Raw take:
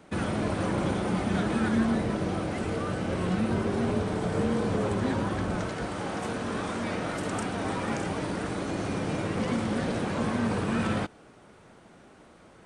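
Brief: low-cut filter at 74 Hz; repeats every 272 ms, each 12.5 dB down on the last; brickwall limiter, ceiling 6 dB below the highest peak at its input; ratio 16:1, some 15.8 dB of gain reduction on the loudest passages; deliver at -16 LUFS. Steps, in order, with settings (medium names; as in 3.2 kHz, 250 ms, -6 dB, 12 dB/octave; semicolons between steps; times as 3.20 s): high-pass 74 Hz; compression 16:1, threshold -38 dBFS; peak limiter -34 dBFS; feedback delay 272 ms, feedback 24%, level -12.5 dB; trim +27.5 dB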